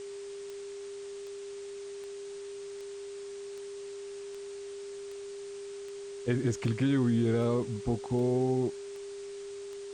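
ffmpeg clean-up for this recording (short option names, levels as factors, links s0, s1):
-af "adeclick=t=4,bandreject=f=400:w=30,afwtdn=0.0028"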